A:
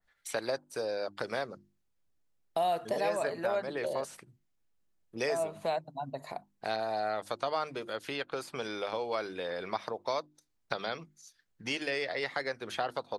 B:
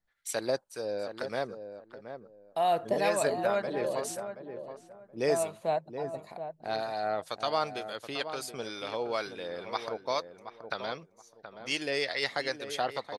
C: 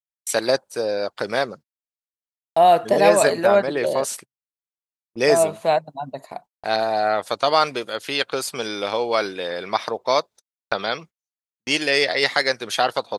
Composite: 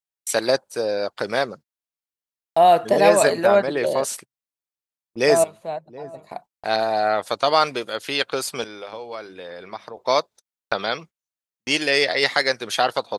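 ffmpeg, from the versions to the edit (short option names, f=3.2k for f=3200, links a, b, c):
-filter_complex "[2:a]asplit=3[a][b][c];[a]atrim=end=5.442[d];[1:a]atrim=start=5.438:end=6.292[e];[b]atrim=start=6.288:end=8.642[f];[0:a]atrim=start=8.638:end=9.972[g];[c]atrim=start=9.968[h];[d][e]acrossfade=d=0.004:c1=hsin:c2=hsin[i];[i][f]acrossfade=d=0.004:c1=hsin:c2=hsin[j];[j][g]acrossfade=d=0.004:c1=hsin:c2=hsin[k];[k][h]acrossfade=d=0.004:c1=hsin:c2=hsin"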